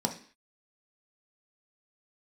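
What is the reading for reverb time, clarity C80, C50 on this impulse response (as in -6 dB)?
0.45 s, 16.0 dB, 11.0 dB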